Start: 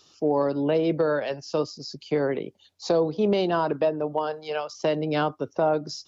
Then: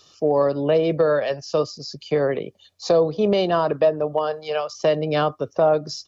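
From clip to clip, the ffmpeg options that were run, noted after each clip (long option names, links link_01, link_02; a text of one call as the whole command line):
ffmpeg -i in.wav -af "aecho=1:1:1.7:0.37,volume=3.5dB" out.wav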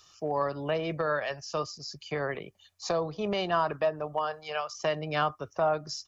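ffmpeg -i in.wav -af "equalizer=frequency=125:width_type=o:width=1:gain=-6,equalizer=frequency=250:width_type=o:width=1:gain=-10,equalizer=frequency=500:width_type=o:width=1:gain=-12,equalizer=frequency=4000:width_type=o:width=1:gain=-8" out.wav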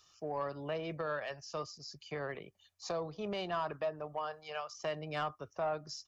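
ffmpeg -i in.wav -af "asoftclip=type=tanh:threshold=-17.5dB,volume=-7.5dB" out.wav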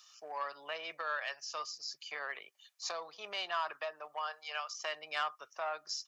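ffmpeg -i in.wav -af "highpass=1200,volume=6dB" out.wav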